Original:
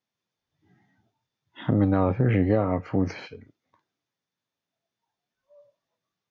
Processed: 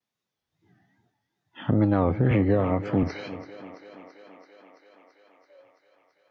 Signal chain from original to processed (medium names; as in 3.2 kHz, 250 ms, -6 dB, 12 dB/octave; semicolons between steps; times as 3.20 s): wow and flutter 110 cents; thinning echo 334 ms, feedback 77%, high-pass 240 Hz, level -14 dB; 2.31–3.03 s: three bands compressed up and down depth 40%